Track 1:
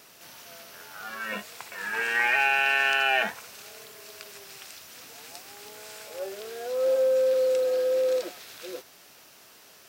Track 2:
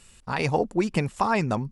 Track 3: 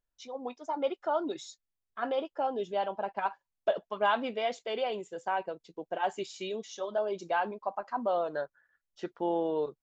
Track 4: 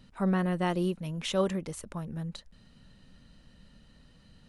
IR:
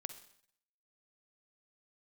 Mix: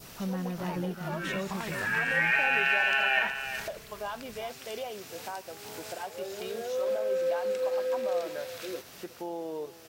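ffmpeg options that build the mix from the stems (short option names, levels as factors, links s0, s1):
-filter_complex "[0:a]adynamicequalizer=threshold=0.0126:dfrequency=1900:dqfactor=0.97:tfrequency=1900:tqfactor=0.97:attack=5:release=100:ratio=0.375:range=4:mode=boostabove:tftype=bell,volume=1.41,asplit=3[s0][s1][s2];[s1]volume=0.237[s3];[s2]volume=0.0891[s4];[1:a]adelay=300,volume=0.168[s5];[2:a]volume=0.668,asplit=3[s6][s7][s8];[s7]volume=0.0891[s9];[3:a]volume=0.398,asplit=3[s10][s11][s12];[s11]volume=0.501[s13];[s12]volume=0.398[s14];[s8]apad=whole_len=436086[s15];[s0][s15]sidechaincompress=threshold=0.00708:ratio=8:attack=28:release=473[s16];[s5][s6]amix=inputs=2:normalize=0,alimiter=level_in=1.58:limit=0.0631:level=0:latency=1:release=345,volume=0.631,volume=1[s17];[s16][s10]amix=inputs=2:normalize=0,equalizer=f=92:w=0.42:g=12,acompressor=threshold=0.01:ratio=2,volume=1[s18];[4:a]atrim=start_sample=2205[s19];[s3][s13]amix=inputs=2:normalize=0[s20];[s20][s19]afir=irnorm=-1:irlink=0[s21];[s4][s9][s14]amix=inputs=3:normalize=0,aecho=0:1:368:1[s22];[s17][s18][s21][s22]amix=inputs=4:normalize=0"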